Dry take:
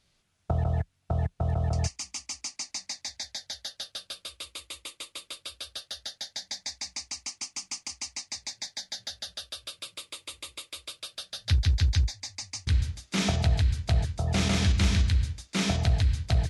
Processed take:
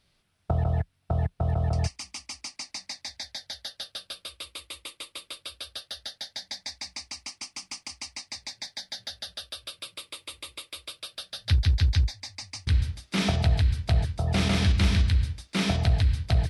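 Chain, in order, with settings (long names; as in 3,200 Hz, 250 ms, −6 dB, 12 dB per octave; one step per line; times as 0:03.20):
parametric band 6,800 Hz −10 dB 0.4 octaves
level +1.5 dB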